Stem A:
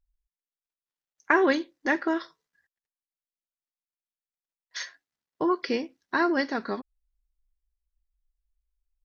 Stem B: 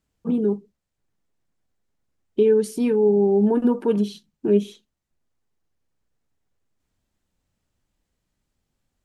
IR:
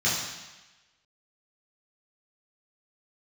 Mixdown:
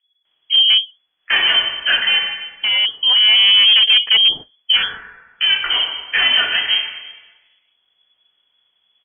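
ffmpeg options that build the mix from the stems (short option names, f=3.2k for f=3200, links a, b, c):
-filter_complex "[0:a]lowpass=f=2.7k:p=1,volume=25.5dB,asoftclip=hard,volume=-25.5dB,volume=2.5dB,asplit=3[a][b][c];[b]volume=-10.5dB[d];[1:a]aeval=exprs='0.168*(abs(mod(val(0)/0.168+3,4)-2)-1)':c=same,adelay=250,volume=3dB[e];[c]apad=whole_len=409966[f];[e][f]sidechaincompress=threshold=-39dB:ratio=5:attack=11:release=1230[g];[2:a]atrim=start_sample=2205[h];[d][h]afir=irnorm=-1:irlink=0[i];[a][g][i]amix=inputs=3:normalize=0,highshelf=f=2.6k:g=6.5,acontrast=75,lowpass=f=2.9k:t=q:w=0.5098,lowpass=f=2.9k:t=q:w=0.6013,lowpass=f=2.9k:t=q:w=0.9,lowpass=f=2.9k:t=q:w=2.563,afreqshift=-3400"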